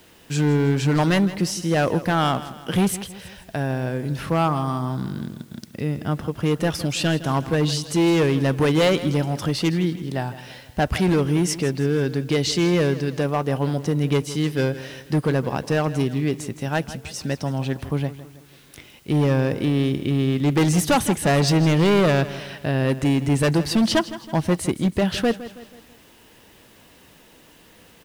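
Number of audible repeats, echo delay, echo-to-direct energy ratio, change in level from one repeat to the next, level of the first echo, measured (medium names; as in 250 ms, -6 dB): 3, 162 ms, -14.0 dB, -7.0 dB, -15.0 dB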